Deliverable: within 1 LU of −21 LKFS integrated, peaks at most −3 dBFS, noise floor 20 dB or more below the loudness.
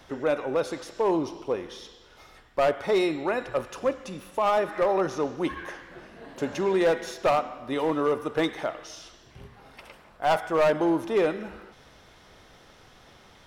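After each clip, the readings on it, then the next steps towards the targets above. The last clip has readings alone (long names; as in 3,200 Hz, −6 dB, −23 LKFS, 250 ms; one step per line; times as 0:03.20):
share of clipped samples 1.0%; peaks flattened at −17.0 dBFS; integrated loudness −26.5 LKFS; sample peak −17.0 dBFS; target loudness −21.0 LKFS
→ clipped peaks rebuilt −17 dBFS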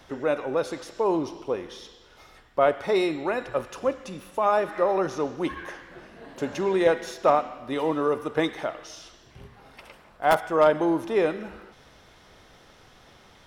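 share of clipped samples 0.0%; integrated loudness −25.5 LKFS; sample peak −8.0 dBFS; target loudness −21.0 LKFS
→ level +4.5 dB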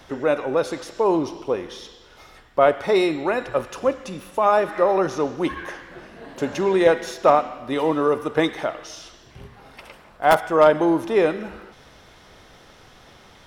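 integrated loudness −21.0 LKFS; sample peak −3.5 dBFS; background noise floor −50 dBFS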